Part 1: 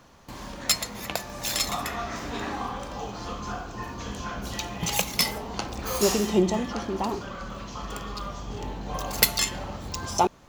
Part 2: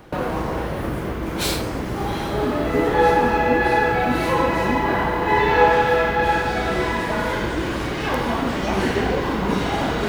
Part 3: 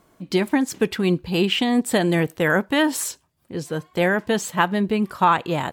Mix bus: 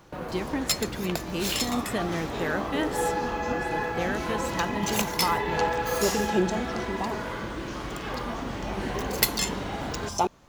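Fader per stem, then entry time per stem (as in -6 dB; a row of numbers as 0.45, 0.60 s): -3.0, -11.5, -11.0 dB; 0.00, 0.00, 0.00 s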